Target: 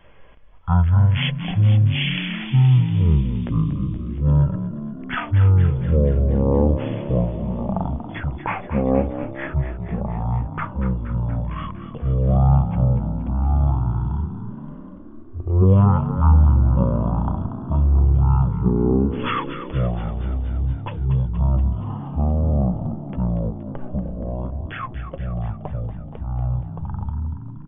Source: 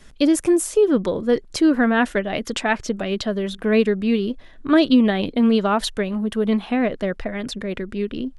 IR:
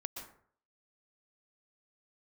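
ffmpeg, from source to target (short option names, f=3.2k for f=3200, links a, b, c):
-filter_complex "[0:a]asetrate=13362,aresample=44100,asplit=2[a][b];[b]asplit=8[c][d][e][f][g][h][i][j];[c]adelay=236,afreqshift=37,volume=-11dB[k];[d]adelay=472,afreqshift=74,volume=-15dB[l];[e]adelay=708,afreqshift=111,volume=-19dB[m];[f]adelay=944,afreqshift=148,volume=-23dB[n];[g]adelay=1180,afreqshift=185,volume=-27.1dB[o];[h]adelay=1416,afreqshift=222,volume=-31.1dB[p];[i]adelay=1652,afreqshift=259,volume=-35.1dB[q];[j]adelay=1888,afreqshift=296,volume=-39.1dB[r];[k][l][m][n][o][p][q][r]amix=inputs=8:normalize=0[s];[a][s]amix=inputs=2:normalize=0"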